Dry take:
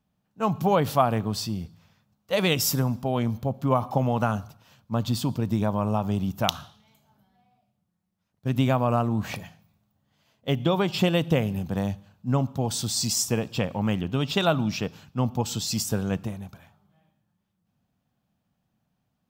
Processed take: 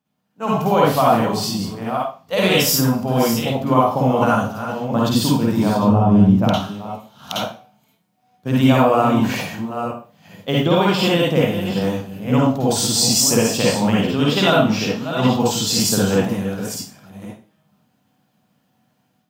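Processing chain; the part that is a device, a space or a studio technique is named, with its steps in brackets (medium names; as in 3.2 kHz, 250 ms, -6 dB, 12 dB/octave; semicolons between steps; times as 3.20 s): chunks repeated in reverse 493 ms, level -10 dB; 5.82–6.55 s: tilt EQ -3.5 dB/octave; far laptop microphone (reverberation RT60 0.35 s, pre-delay 46 ms, DRR -5.5 dB; high-pass 170 Hz 12 dB/octave; level rider gain up to 8.5 dB); trim -1.5 dB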